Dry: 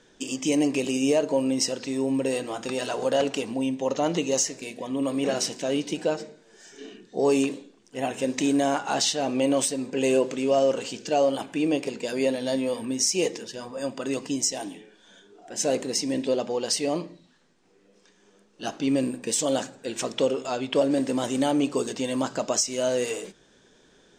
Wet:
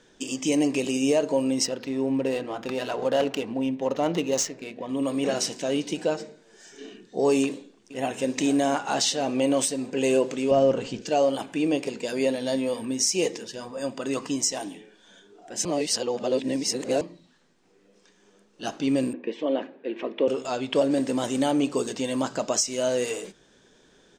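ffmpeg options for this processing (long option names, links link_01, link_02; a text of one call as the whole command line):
ffmpeg -i in.wav -filter_complex "[0:a]asettb=1/sr,asplit=3[link_01][link_02][link_03];[link_01]atrim=end=1.654[link_04];[link_02]atrim=start=1.65:end=4.89,asetpts=PTS-STARTPTS,afade=type=in:duration=0.004:curve=qsin,afade=type=out:start_time=3.236:duration=0.004:curve=qsin,adynamicsmooth=sensitivity=4.5:basefreq=2400[link_05];[link_03]atrim=start=4.886[link_06];[link_04][link_05]acrossfade=duration=0.004:curve1=hsin:curve2=qsin[link_07];[link_07][link_06]acrossfade=duration=0.004:curve1=qsin:curve2=hsin,asplit=2[link_08][link_09];[link_09]afade=type=in:start_time=7.45:duration=0.01,afade=type=out:start_time=8.33:duration=0.01,aecho=0:1:450|900|1350|1800|2250|2700|3150:0.177828|0.115588|0.0751323|0.048836|0.0317434|0.0206332|0.0134116[link_10];[link_08][link_10]amix=inputs=2:normalize=0,asettb=1/sr,asplit=3[link_11][link_12][link_13];[link_11]atrim=end=10.514[link_14];[link_12]atrim=start=10.51:end=11.02,asetpts=PTS-STARTPTS,afade=type=in:duration=0.004:curve=qsin,afade=type=out:start_time=0.506:duration=0.004:curve=qsin,aemphasis=mode=reproduction:type=bsi[link_15];[link_13]atrim=start=11.016[link_16];[link_14][link_15]acrossfade=duration=0.004:curve1=hsin:curve2=qsin[link_17];[link_17][link_16]acrossfade=duration=0.004:curve1=qsin:curve2=hsin,asettb=1/sr,asplit=3[link_18][link_19][link_20];[link_18]atrim=end=14.154[link_21];[link_19]atrim=start=14.15:end=14.59,asetpts=PTS-STARTPTS,afade=type=in:duration=0.004:curve=qsin,afade=type=out:start_time=0.436:duration=0.004:curve=qsin,equalizer=frequency=1200:width_type=o:width=0.7:gain=10.5[link_22];[link_20]atrim=start=14.586[link_23];[link_21][link_22]acrossfade=duration=0.004:curve1=hsin:curve2=qsin[link_24];[link_24][link_23]acrossfade=duration=0.004:curve1=qsin:curve2=hsin,asettb=1/sr,asplit=3[link_25][link_26][link_27];[link_25]atrim=end=19.134[link_28];[link_26]atrim=start=19.13:end=20.28,asetpts=PTS-STARTPTS,afade=type=in:duration=0.004:curve=qsin,afade=type=out:start_time=1.146:duration=0.004:curve=qsin,highpass=frequency=230:width=0.5412,highpass=frequency=230:width=1.3066,equalizer=frequency=350:width_type=q:width=4:gain=5,equalizer=frequency=790:width_type=q:width=4:gain=-5,equalizer=frequency=1400:width_type=q:width=4:gain=-9,lowpass=frequency=2600:width=0.5412,lowpass=frequency=2600:width=1.3066[link_29];[link_27]atrim=start=20.276[link_30];[link_28][link_29]acrossfade=duration=0.004:curve1=hsin:curve2=qsin[link_31];[link_31][link_30]acrossfade=duration=0.004:curve1=qsin:curve2=hsin,asplit=3[link_32][link_33][link_34];[link_32]atrim=end=15.652[link_35];[link_33]atrim=start=15.648:end=17.012,asetpts=PTS-STARTPTS,areverse[link_36];[link_34]atrim=start=17.008[link_37];[link_35][link_36]acrossfade=duration=0.004:curve1=hsin:curve2=hsin[link_38];[link_38][link_37]acrossfade=duration=0.004:curve1=hsin:curve2=hsin" out.wav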